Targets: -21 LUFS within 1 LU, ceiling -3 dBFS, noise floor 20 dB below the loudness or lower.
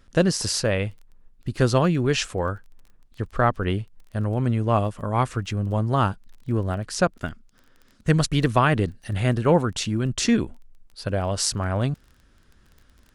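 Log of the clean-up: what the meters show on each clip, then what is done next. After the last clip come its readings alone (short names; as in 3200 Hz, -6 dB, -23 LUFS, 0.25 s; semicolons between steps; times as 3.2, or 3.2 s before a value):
ticks 19/s; loudness -23.5 LUFS; peak -4.0 dBFS; loudness target -21.0 LUFS
-> de-click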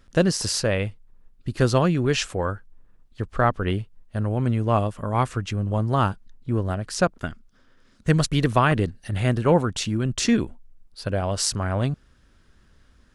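ticks 0/s; loudness -23.5 LUFS; peak -4.0 dBFS; loudness target -21.0 LUFS
-> gain +2.5 dB; limiter -3 dBFS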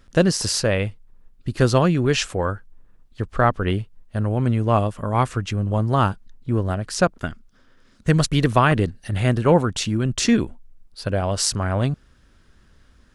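loudness -21.5 LUFS; peak -3.0 dBFS; noise floor -55 dBFS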